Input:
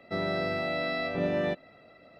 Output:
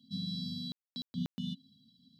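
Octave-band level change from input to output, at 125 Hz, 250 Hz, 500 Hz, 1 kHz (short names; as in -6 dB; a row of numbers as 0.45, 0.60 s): -3.0, -4.0, -35.5, -31.5 dB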